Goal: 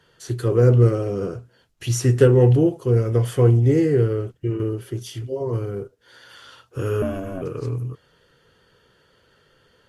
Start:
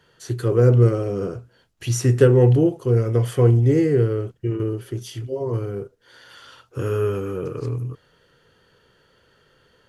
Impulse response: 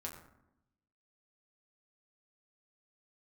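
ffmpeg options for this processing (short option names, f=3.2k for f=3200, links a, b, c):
-filter_complex "[0:a]asettb=1/sr,asplit=3[a][b][c];[a]atrim=end=7.024[d];[b]atrim=start=7.02:end=7.42,asetpts=PTS-STARTPTS,afade=t=in:d=0.004:c=qsin,afade=t=out:st=0.396:d=0.004:c=qsin,aeval=exprs='val(0)*sin(2*PI*190*n/s)':c=same[e];[c]atrim=start=7.416[f];[d][e]acrossfade=d=0.004:c1=hsin:c2=qsin[g];[g][f]acrossfade=d=0.004:c1=qsin:c2=hsin" -ar 44100 -c:a libvorbis -b:a 48k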